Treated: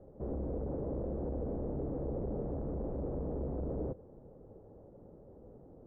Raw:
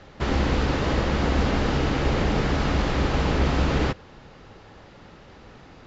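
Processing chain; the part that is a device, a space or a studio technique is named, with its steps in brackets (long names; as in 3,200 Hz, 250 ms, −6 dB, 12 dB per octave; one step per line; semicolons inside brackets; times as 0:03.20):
overdriven synthesiser ladder filter (soft clipping −26.5 dBFS, distortion −8 dB; transistor ladder low-pass 630 Hz, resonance 40%)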